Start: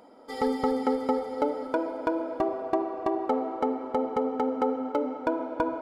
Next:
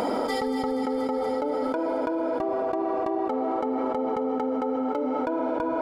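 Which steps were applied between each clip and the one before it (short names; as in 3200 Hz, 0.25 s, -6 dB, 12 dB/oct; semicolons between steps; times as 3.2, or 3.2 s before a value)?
fast leveller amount 100%; gain -5 dB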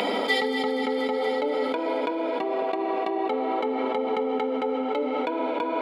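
Chebyshev high-pass 190 Hz, order 4; band shelf 2900 Hz +13.5 dB 1.3 oct; reverb RT60 0.25 s, pre-delay 3 ms, DRR 8 dB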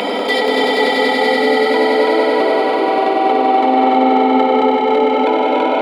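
in parallel at -1.5 dB: limiter -21 dBFS, peak gain reduction 8.5 dB; on the sum: swelling echo 96 ms, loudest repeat 5, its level -4.5 dB; gain +3 dB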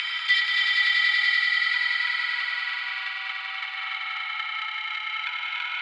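steep high-pass 1500 Hz 36 dB/oct; air absorption 120 m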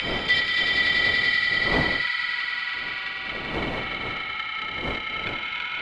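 wind noise 630 Hz -35 dBFS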